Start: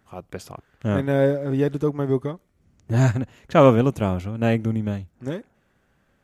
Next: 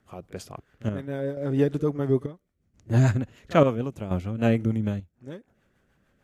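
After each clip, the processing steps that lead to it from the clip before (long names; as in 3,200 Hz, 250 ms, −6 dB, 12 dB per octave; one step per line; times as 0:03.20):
echo ahead of the sound 39 ms −21 dB
rotating-speaker cabinet horn 6.7 Hz
square-wave tremolo 0.73 Hz, depth 65%, duty 65%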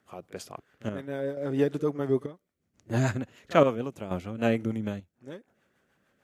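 high-pass filter 290 Hz 6 dB per octave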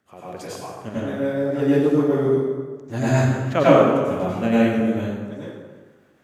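dense smooth reverb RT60 1.4 s, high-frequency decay 0.65×, pre-delay 80 ms, DRR −9 dB
level −1 dB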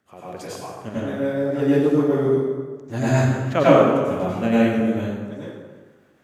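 no processing that can be heard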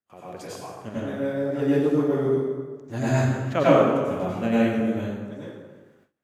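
noise gate with hold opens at −45 dBFS
level −3.5 dB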